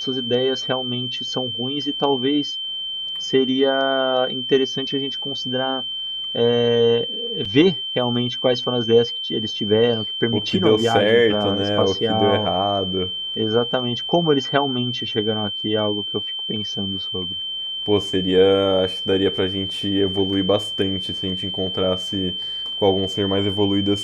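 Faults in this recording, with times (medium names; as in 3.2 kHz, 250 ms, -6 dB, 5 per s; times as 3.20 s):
whine 3.1 kHz -25 dBFS
7.45 s: dropout 4.8 ms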